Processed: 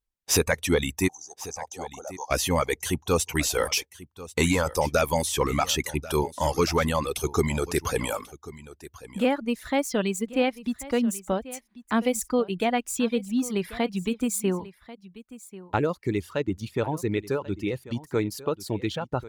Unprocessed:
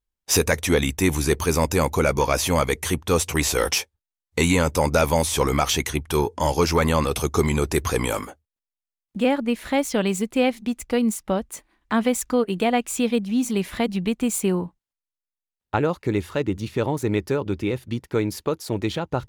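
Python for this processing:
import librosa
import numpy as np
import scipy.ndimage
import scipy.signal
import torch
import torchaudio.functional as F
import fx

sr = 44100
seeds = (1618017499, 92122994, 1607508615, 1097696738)

y = fx.double_bandpass(x, sr, hz=2200.0, octaves=3.0, at=(1.07, 2.3), fade=0.02)
y = fx.dereverb_blind(y, sr, rt60_s=1.5)
y = y + 10.0 ** (-17.5 / 20.0) * np.pad(y, (int(1089 * sr / 1000.0), 0))[:len(y)]
y = y * librosa.db_to_amplitude(-2.5)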